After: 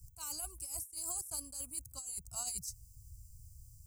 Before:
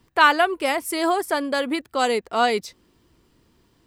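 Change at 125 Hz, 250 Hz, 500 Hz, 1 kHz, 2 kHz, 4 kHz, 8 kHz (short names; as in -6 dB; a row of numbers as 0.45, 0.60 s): n/a, -32.0 dB, -36.5 dB, -34.0 dB, under -40 dB, -21.5 dB, -0.5 dB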